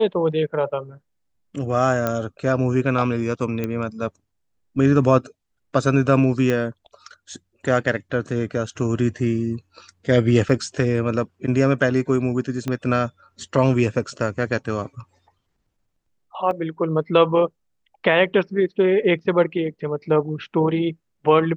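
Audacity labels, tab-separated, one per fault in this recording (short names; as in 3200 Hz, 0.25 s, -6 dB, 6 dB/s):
2.070000	2.070000	pop -9 dBFS
3.640000	3.640000	pop -13 dBFS
6.500000	6.500000	pop -11 dBFS
10.490000	10.490000	gap 4.1 ms
12.680000	12.680000	pop -13 dBFS
16.510000	16.510000	gap 2.1 ms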